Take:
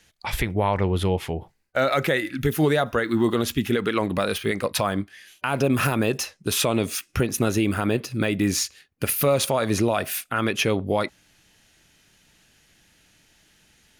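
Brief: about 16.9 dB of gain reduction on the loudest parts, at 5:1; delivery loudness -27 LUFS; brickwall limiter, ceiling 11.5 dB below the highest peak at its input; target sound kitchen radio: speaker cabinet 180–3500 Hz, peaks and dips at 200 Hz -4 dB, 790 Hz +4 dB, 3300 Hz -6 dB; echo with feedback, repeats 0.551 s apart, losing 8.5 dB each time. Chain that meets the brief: compressor 5:1, threshold -37 dBFS; limiter -30.5 dBFS; speaker cabinet 180–3500 Hz, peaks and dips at 200 Hz -4 dB, 790 Hz +4 dB, 3300 Hz -6 dB; feedback echo 0.551 s, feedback 38%, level -8.5 dB; gain +16 dB

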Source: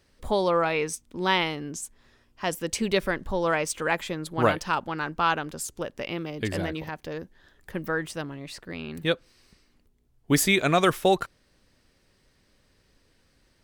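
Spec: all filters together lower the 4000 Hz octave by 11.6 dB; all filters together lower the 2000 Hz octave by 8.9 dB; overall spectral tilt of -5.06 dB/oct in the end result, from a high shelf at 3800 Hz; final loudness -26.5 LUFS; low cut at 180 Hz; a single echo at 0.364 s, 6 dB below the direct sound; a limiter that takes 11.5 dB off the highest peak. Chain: HPF 180 Hz; bell 2000 Hz -8.5 dB; high shelf 3800 Hz -6.5 dB; bell 4000 Hz -8 dB; limiter -19.5 dBFS; echo 0.364 s -6 dB; gain +5.5 dB

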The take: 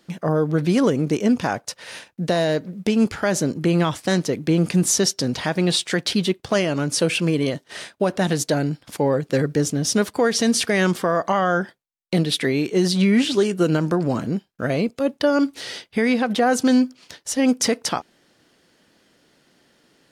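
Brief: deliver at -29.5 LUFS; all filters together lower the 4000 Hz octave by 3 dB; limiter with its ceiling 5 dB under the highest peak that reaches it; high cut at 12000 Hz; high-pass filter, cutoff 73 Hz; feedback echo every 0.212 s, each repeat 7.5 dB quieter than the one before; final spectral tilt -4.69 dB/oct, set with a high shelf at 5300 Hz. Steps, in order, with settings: HPF 73 Hz; LPF 12000 Hz; bell 4000 Hz -7.5 dB; high shelf 5300 Hz +7 dB; limiter -11.5 dBFS; feedback echo 0.212 s, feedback 42%, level -7.5 dB; gain -7.5 dB

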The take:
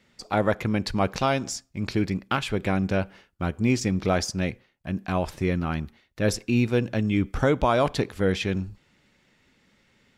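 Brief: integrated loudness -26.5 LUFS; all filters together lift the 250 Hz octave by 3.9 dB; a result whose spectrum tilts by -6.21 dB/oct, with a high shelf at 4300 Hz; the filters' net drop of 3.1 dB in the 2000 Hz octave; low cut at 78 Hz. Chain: HPF 78 Hz; bell 250 Hz +5 dB; bell 2000 Hz -5 dB; high shelf 4300 Hz +3 dB; gain -2.5 dB

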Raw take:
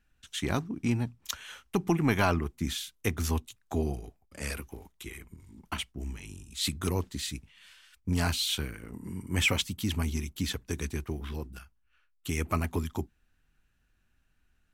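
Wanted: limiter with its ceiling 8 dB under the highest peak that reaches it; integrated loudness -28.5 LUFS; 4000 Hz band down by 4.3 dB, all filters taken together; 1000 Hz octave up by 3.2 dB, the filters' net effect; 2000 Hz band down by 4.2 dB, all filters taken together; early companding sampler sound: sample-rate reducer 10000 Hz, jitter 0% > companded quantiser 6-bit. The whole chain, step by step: bell 1000 Hz +6 dB; bell 2000 Hz -6.5 dB; bell 4000 Hz -3.5 dB; limiter -19 dBFS; sample-rate reducer 10000 Hz, jitter 0%; companded quantiser 6-bit; gain +5.5 dB

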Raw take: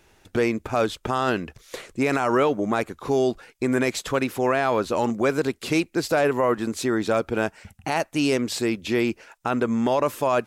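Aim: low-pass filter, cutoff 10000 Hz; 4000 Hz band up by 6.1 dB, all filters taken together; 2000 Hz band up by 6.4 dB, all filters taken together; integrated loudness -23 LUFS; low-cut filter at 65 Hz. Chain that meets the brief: HPF 65 Hz; LPF 10000 Hz; bell 2000 Hz +7 dB; bell 4000 Hz +5.5 dB; gain -1 dB

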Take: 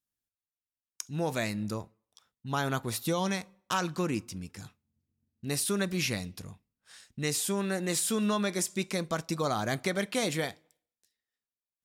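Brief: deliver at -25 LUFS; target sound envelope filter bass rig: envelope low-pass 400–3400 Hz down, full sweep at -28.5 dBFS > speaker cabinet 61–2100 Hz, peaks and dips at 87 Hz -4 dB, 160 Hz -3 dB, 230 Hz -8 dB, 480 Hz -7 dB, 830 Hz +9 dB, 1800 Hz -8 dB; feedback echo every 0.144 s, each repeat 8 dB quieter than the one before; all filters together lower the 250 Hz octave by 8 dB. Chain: bell 250 Hz -6.5 dB; feedback echo 0.144 s, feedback 40%, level -8 dB; envelope low-pass 400–3400 Hz down, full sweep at -28.5 dBFS; speaker cabinet 61–2100 Hz, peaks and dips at 87 Hz -4 dB, 160 Hz -3 dB, 230 Hz -8 dB, 480 Hz -7 dB, 830 Hz +9 dB, 1800 Hz -8 dB; gain +7.5 dB

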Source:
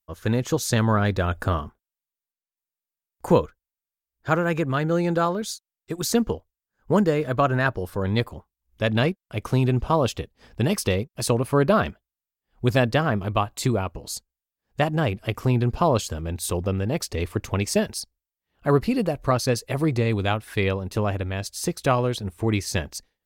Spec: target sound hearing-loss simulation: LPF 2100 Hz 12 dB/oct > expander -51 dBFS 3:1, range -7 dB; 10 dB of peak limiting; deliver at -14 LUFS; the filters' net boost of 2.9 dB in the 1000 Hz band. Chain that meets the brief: bell 1000 Hz +4 dB; limiter -15 dBFS; LPF 2100 Hz 12 dB/oct; expander -51 dBFS 3:1, range -7 dB; gain +13 dB

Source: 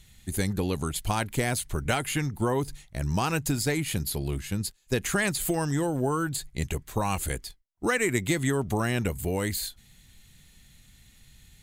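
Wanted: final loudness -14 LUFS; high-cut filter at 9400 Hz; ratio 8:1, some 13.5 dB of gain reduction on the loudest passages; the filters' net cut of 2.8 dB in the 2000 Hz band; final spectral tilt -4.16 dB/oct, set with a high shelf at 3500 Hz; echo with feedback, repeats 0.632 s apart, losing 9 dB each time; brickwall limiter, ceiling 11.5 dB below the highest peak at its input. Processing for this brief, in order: LPF 9400 Hz; bell 2000 Hz -5 dB; high shelf 3500 Hz +5.5 dB; compressor 8:1, threshold -36 dBFS; limiter -31.5 dBFS; feedback echo 0.632 s, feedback 35%, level -9 dB; gain +28 dB

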